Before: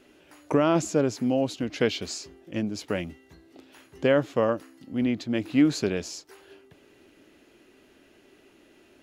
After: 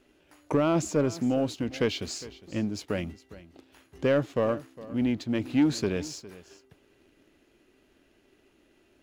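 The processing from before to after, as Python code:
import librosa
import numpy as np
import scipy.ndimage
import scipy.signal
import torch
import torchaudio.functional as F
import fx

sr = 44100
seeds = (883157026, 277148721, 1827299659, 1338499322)

p1 = fx.low_shelf(x, sr, hz=81.0, db=10.5)
p2 = fx.leveller(p1, sr, passes=1)
p3 = p2 + fx.echo_single(p2, sr, ms=408, db=-18.0, dry=0)
y = F.gain(torch.from_numpy(p3), -5.5).numpy()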